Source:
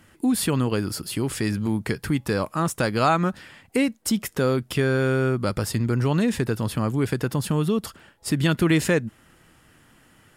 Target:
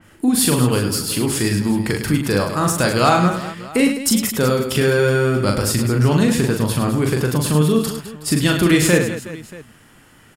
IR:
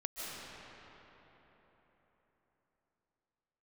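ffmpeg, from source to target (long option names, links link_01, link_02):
-af "acontrast=30,aecho=1:1:40|104|206.4|370.2|632.4:0.631|0.398|0.251|0.158|0.1,adynamicequalizer=threshold=0.0251:dfrequency=3600:dqfactor=0.7:tfrequency=3600:tqfactor=0.7:attack=5:release=100:ratio=0.375:range=2.5:mode=boostabove:tftype=highshelf,volume=-1dB"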